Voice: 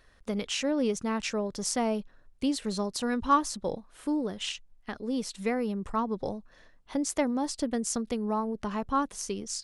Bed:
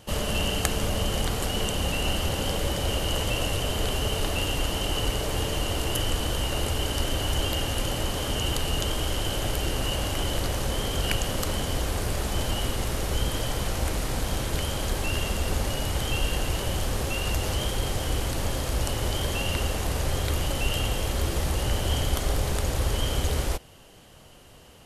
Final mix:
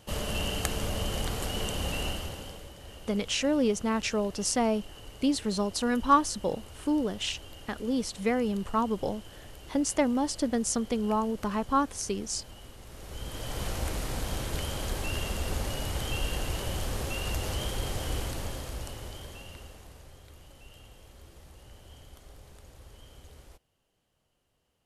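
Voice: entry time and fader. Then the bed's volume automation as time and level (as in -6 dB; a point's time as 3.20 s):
2.80 s, +2.0 dB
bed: 2.02 s -5 dB
2.73 s -20.5 dB
12.81 s -20.5 dB
13.63 s -5 dB
18.19 s -5 dB
20.19 s -25.5 dB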